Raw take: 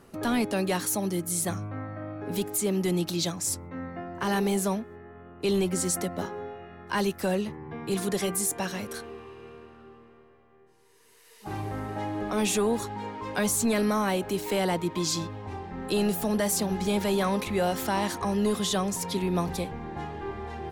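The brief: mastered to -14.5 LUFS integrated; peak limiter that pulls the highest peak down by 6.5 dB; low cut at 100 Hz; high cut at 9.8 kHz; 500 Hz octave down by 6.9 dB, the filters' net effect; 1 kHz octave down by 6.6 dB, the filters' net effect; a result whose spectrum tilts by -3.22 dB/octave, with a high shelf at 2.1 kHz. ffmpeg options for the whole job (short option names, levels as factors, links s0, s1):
-af "highpass=100,lowpass=9800,equalizer=f=500:t=o:g=-8.5,equalizer=f=1000:t=o:g=-7,highshelf=f=2100:g=7,volume=5.96,alimiter=limit=0.668:level=0:latency=1"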